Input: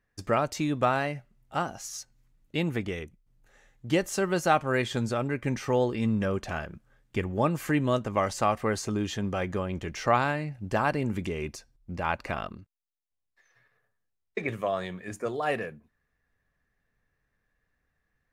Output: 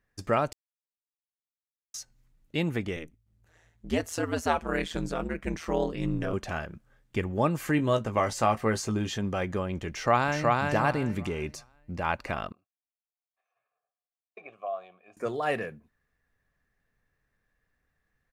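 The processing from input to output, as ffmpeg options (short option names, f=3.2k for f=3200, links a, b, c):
-filter_complex "[0:a]asettb=1/sr,asplit=3[a][b][c];[a]atrim=end=2.964[d];[b]atrim=start=2.96:end=6.33,asetpts=PTS-STARTPTS,afade=t=in:d=0.004:c=qsin,afade=t=out:st=3.366:d=0.004:c=qsin,aeval=exprs='val(0)*sin(2*PI*81*n/s)':c=same[e];[c]atrim=start=6.326[f];[d][e]acrossfade=d=0.004:c1=hsin:c2=qsin[g];[g][f]acrossfade=d=0.004:c1=qsin:c2=hsin,asettb=1/sr,asplit=3[h][i][j];[h]atrim=end=7.774[k];[i]atrim=start=7.77:end=9.18,asetpts=PTS-STARTPTS,afade=t=in:d=0.004:c=qsin,afade=t=out:st=1.406:d=0.004:c=qsin,asplit=2[l][m];[m]adelay=18,volume=-8dB[n];[l][n]amix=inputs=2:normalize=0,atrim=end_sample=62181[o];[j]atrim=start=9.176[p];[k][o]acrossfade=d=0.004:c1=hsin:c2=qsin[q];[q][p]acrossfade=d=0.004:c1=qsin:c2=hsin,asplit=2[r][s];[s]afade=t=in:st=9.9:d=0.01,afade=t=out:st=10.61:d=0.01,aecho=0:1:370|740|1110|1480:0.841395|0.210349|0.0525872|0.0131468[t];[r][t]amix=inputs=2:normalize=0,asettb=1/sr,asplit=3[u][v][w];[u]atrim=end=12.524[x];[v]atrim=start=12.52:end=15.17,asetpts=PTS-STARTPTS,afade=t=in:d=0.004:c=qsin,afade=t=out:st=2.646:d=0.004:c=qsin,asplit=3[y][z][aa];[y]bandpass=f=730:t=q:w=8,volume=0dB[ab];[z]bandpass=f=1.09k:t=q:w=8,volume=-6dB[ac];[aa]bandpass=f=2.44k:t=q:w=8,volume=-9dB[ad];[ab][ac][ad]amix=inputs=3:normalize=0[ae];[w]atrim=start=15.166[af];[x][ae]acrossfade=d=0.004:c1=hsin:c2=qsin[ag];[ag][af]acrossfade=d=0.004:c1=qsin:c2=hsin,asplit=3[ah][ai][aj];[ah]atrim=end=0.53,asetpts=PTS-STARTPTS,afade=t=out:st=0.526:d=0.004:c=hsin[ak];[ai]atrim=start=0.53:end=1.94,asetpts=PTS-STARTPTS,volume=0[al];[aj]atrim=start=1.94,asetpts=PTS-STARTPTS,afade=t=in:d=0.004:c=hsin[am];[ak][al][am]concat=n=3:v=0:a=1"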